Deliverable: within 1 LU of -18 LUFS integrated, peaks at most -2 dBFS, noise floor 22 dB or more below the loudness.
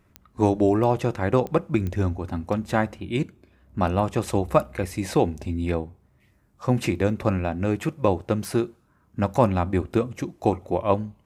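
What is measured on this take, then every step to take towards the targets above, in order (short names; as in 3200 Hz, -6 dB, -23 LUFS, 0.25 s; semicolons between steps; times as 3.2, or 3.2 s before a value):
clicks 4; loudness -25.0 LUFS; peak -4.5 dBFS; loudness target -18.0 LUFS
-> de-click; gain +7 dB; limiter -2 dBFS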